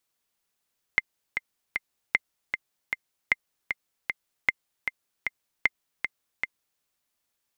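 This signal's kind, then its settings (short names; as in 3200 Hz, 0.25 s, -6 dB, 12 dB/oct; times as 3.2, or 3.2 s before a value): metronome 154 bpm, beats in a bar 3, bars 5, 2090 Hz, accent 7 dB -6.5 dBFS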